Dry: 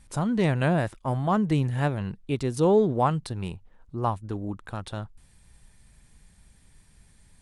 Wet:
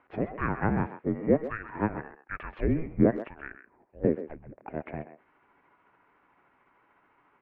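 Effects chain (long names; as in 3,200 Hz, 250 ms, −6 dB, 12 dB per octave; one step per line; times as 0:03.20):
pitch shift by two crossfaded delay taps −5.5 semitones
single-sideband voice off tune −320 Hz 500–2,400 Hz
dynamic equaliser 840 Hz, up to −6 dB, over −51 dBFS, Q 3.5
far-end echo of a speakerphone 130 ms, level −11 dB
level +6.5 dB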